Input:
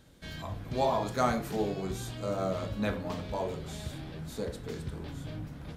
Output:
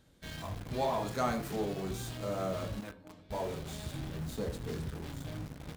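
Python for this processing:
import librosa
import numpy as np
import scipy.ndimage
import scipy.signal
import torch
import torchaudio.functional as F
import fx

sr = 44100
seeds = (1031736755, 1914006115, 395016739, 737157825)

p1 = fx.comb_fb(x, sr, f0_hz=310.0, decay_s=0.35, harmonics='odd', damping=0.0, mix_pct=80, at=(2.79, 3.3), fade=0.02)
p2 = fx.low_shelf(p1, sr, hz=250.0, db=5.5, at=(3.94, 4.86))
p3 = fx.quant_companded(p2, sr, bits=2)
p4 = p2 + (p3 * librosa.db_to_amplitude(-12.0))
y = p4 * librosa.db_to_amplitude(-6.0)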